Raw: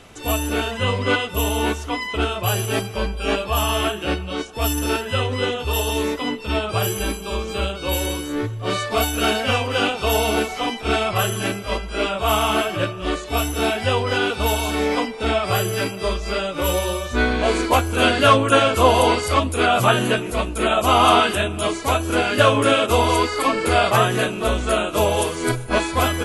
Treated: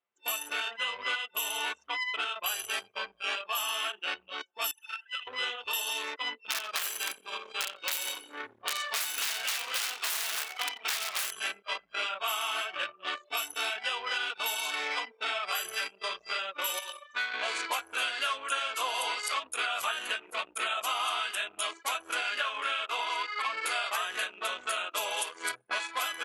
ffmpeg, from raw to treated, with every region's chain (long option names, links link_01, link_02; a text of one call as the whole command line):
ffmpeg -i in.wav -filter_complex "[0:a]asettb=1/sr,asplit=3[link_01][link_02][link_03];[link_01]atrim=end=4.714[link_04];[link_02]atrim=start=4.71:end=5.27,asetpts=PTS-STARTPTS,afade=type=in:duration=0.004:curve=qsin,afade=type=out:start_time=0.556:duration=0.004:curve=qsin,acrossover=split=1200|3900[link_05][link_06][link_07];[link_05]acompressor=threshold=-35dB:ratio=4[link_08];[link_06]acompressor=threshold=-28dB:ratio=4[link_09];[link_07]acompressor=threshold=-38dB:ratio=4[link_10];[link_08][link_09][link_10]amix=inputs=3:normalize=0,highpass=530[link_11];[link_03]atrim=start=5.266[link_12];[link_04][link_11]acrossfade=duration=0.004:curve1=hsin:curve2=qsin[link_13];[link_13][link_12]acrossfade=duration=0.004:curve1=qsin:curve2=hsin,asettb=1/sr,asplit=3[link_14][link_15][link_16];[link_14]atrim=end=6.384[link_17];[link_15]atrim=start=6.38:end=11.31,asetpts=PTS-STARTPTS,afade=type=in:duration=0.004:curve=qsin,afade=type=out:start_time=4.926:duration=0.004:curve=qsin,bandreject=frequency=60:width_type=h:width=6,bandreject=frequency=120:width_type=h:width=6,bandreject=frequency=180:width_type=h:width=6,bandreject=frequency=240:width_type=h:width=6,bandreject=frequency=300:width_type=h:width=6,bandreject=frequency=360:width_type=h:width=6,bandreject=frequency=420:width_type=h:width=6,bandreject=frequency=480:width_type=h:width=6,bandreject=frequency=540:width_type=h:width=6,bandreject=frequency=600:width_type=h:width=6,aeval=exprs='(mod(5.01*val(0)+1,2)-1)/5.01':channel_layout=same,asplit=9[link_18][link_19][link_20][link_21][link_22][link_23][link_24][link_25][link_26];[link_19]adelay=89,afreqshift=-34,volume=-11dB[link_27];[link_20]adelay=178,afreqshift=-68,volume=-15dB[link_28];[link_21]adelay=267,afreqshift=-102,volume=-19dB[link_29];[link_22]adelay=356,afreqshift=-136,volume=-23dB[link_30];[link_23]adelay=445,afreqshift=-170,volume=-27.1dB[link_31];[link_24]adelay=534,afreqshift=-204,volume=-31.1dB[link_32];[link_25]adelay=623,afreqshift=-238,volume=-35.1dB[link_33];[link_26]adelay=712,afreqshift=-272,volume=-39.1dB[link_34];[link_18][link_27][link_28][link_29][link_30][link_31][link_32][link_33][link_34]amix=inputs=9:normalize=0,atrim=end_sample=217413[link_35];[link_16]atrim=start=11.306[link_36];[link_17][link_35]acrossfade=duration=0.004:curve1=hsin:curve2=qsin[link_37];[link_37][link_36]acrossfade=duration=0.004:curve1=qsin:curve2=hsin,asettb=1/sr,asplit=3[link_38][link_39][link_40];[link_38]atrim=end=16.794[link_41];[link_39]atrim=start=16.79:end=17.34,asetpts=PTS-STARTPTS,afade=type=in:duration=0.004:curve=qsin,afade=type=out:start_time=0.546:duration=0.004:curve=qsin,highpass=110,equalizer=frequency=330:width=0.63:gain=-9.5,acrusher=bits=7:mode=log:mix=0:aa=0.000001[link_42];[link_40]atrim=start=17.336[link_43];[link_41][link_42]acrossfade=duration=0.004:curve1=hsin:curve2=qsin[link_44];[link_44][link_43]acrossfade=duration=0.004:curve1=qsin:curve2=hsin,asettb=1/sr,asplit=3[link_45][link_46][link_47];[link_45]atrim=end=22.384[link_48];[link_46]atrim=start=22.38:end=23.52,asetpts=PTS-STARTPTS,afade=type=in:duration=0.004:curve=qsin,afade=type=out:start_time=1.136:duration=0.004:curve=qsin,bandreject=frequency=530:width=12,acrossover=split=3900[link_49][link_50];[link_50]acompressor=threshold=-39dB:ratio=4:attack=1:release=60[link_51];[link_49][link_51]amix=inputs=2:normalize=0,lowshelf=frequency=220:gain=-10.5[link_52];[link_47]atrim=start=23.516[link_53];[link_48][link_52]acrossfade=duration=0.004:curve1=hsin:curve2=qsin[link_54];[link_54][link_53]acrossfade=duration=0.004:curve1=qsin:curve2=hsin,anlmdn=398,highpass=1400,acompressor=threshold=-29dB:ratio=6" out.wav